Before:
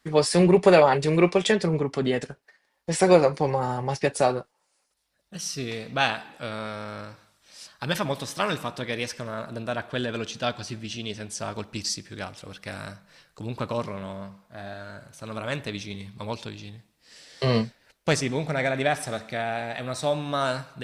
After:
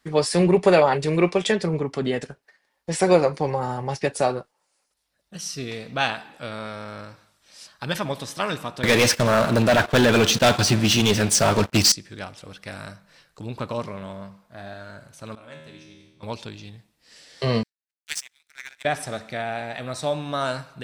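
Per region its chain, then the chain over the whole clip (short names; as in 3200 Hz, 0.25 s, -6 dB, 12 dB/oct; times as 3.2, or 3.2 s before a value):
8.83–11.92 HPF 75 Hz 24 dB/oct + sample leveller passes 5 + gate -26 dBFS, range -11 dB
15.35–16.23 resonator 78 Hz, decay 1.2 s, mix 90% + mismatched tape noise reduction decoder only
17.63–18.85 steep high-pass 1400 Hz 72 dB/oct + high shelf 5300 Hz +11.5 dB + power-law curve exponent 2
whole clip: dry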